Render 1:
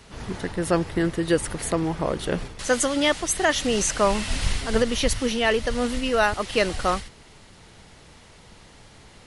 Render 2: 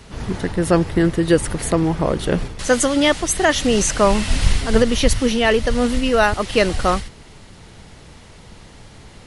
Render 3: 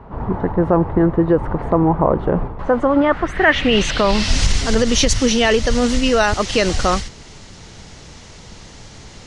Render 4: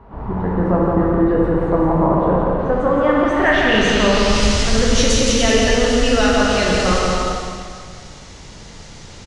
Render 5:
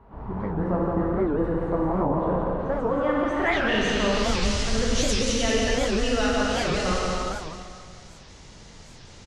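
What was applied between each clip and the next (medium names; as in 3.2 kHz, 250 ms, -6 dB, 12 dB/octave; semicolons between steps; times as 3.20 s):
bass shelf 360 Hz +5 dB; trim +4 dB
peak limiter -8.5 dBFS, peak gain reduction 6.5 dB; low-pass sweep 970 Hz -> 6.4 kHz, 2.87–4.40 s; trim +2.5 dB
on a send: bouncing-ball echo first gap 170 ms, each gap 0.75×, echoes 5; on the sum: plate-style reverb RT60 2 s, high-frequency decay 0.95×, DRR -2.5 dB; trim -5.5 dB
warped record 78 rpm, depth 250 cents; trim -8.5 dB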